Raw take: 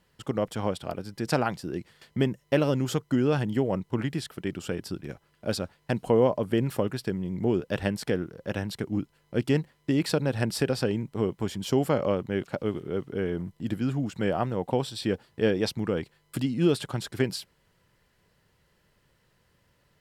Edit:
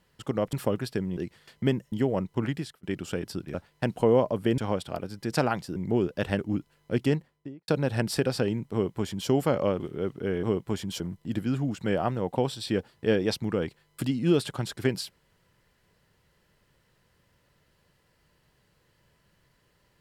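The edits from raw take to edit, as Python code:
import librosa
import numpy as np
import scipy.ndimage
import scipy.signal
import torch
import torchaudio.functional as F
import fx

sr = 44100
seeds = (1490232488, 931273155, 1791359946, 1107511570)

y = fx.studio_fade_out(x, sr, start_s=9.43, length_s=0.68)
y = fx.edit(y, sr, fx.swap(start_s=0.53, length_s=1.18, other_s=6.65, other_length_s=0.64),
    fx.cut(start_s=2.46, length_s=1.02),
    fx.fade_out_span(start_s=4.09, length_s=0.3),
    fx.cut(start_s=5.1, length_s=0.51),
    fx.cut(start_s=7.92, length_s=0.9),
    fx.duplicate(start_s=11.15, length_s=0.57, to_s=13.35),
    fx.cut(start_s=12.23, length_s=0.49), tone=tone)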